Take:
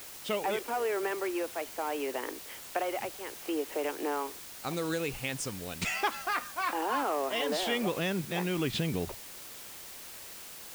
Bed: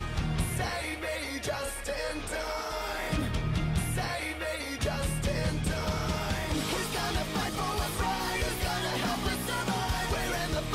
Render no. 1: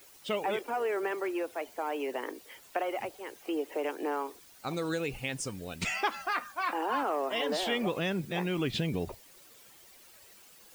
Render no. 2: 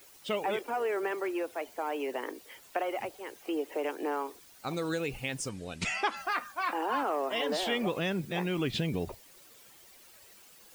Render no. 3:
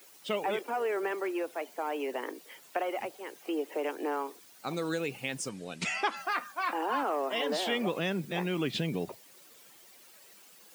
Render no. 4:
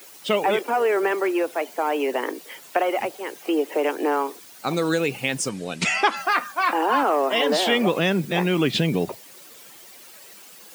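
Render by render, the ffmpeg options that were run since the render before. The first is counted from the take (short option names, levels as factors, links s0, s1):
-af "afftdn=nr=12:nf=-46"
-filter_complex "[0:a]asettb=1/sr,asplit=3[s0][s1][s2];[s0]atrim=end=5.494[s3];[s1]atrim=start=5.49:end=6.17,asetpts=PTS-STARTPTS,afade=t=in:d=0.004:c=qsin,afade=t=out:st=0.676:d=0.004:c=qsin,lowpass=f=10000:w=0.5412,lowpass=f=10000:w=1.3066[s4];[s2]atrim=start=6.166[s5];[s3][s4]acrossfade=d=0.004:c1=hsin:c2=qsin[s6];[s6][s5]acrossfade=d=0.004:c1=qsin:c2=hsin"
-af "highpass=f=140:w=0.5412,highpass=f=140:w=1.3066"
-af "volume=3.35"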